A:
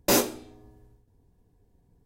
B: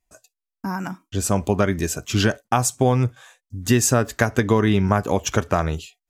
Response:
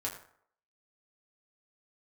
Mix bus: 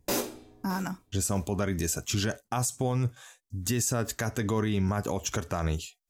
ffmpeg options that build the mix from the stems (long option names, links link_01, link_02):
-filter_complex "[0:a]volume=-4.5dB,asplit=2[link_01][link_02];[link_02]volume=-20.5dB[link_03];[1:a]bass=frequency=250:gain=2,treble=frequency=4000:gain=7,alimiter=limit=-10dB:level=0:latency=1:release=73,volume=-5dB[link_04];[link_03]aecho=0:1:614|1228|1842|2456|3070:1|0.33|0.109|0.0359|0.0119[link_05];[link_01][link_04][link_05]amix=inputs=3:normalize=0,alimiter=limit=-19dB:level=0:latency=1:release=34"